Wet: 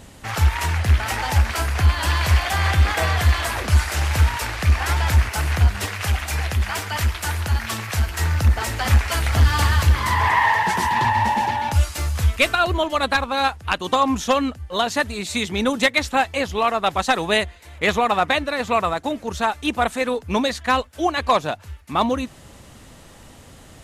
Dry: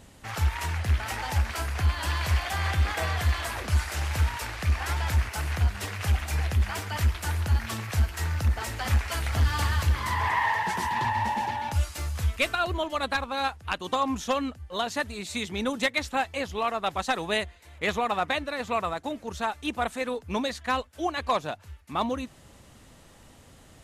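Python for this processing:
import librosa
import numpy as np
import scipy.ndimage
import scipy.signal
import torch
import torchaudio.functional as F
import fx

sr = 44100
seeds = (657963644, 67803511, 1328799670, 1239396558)

y = fx.low_shelf(x, sr, hz=490.0, db=-5.5, at=(5.86, 8.07))
y = y * librosa.db_to_amplitude(8.0)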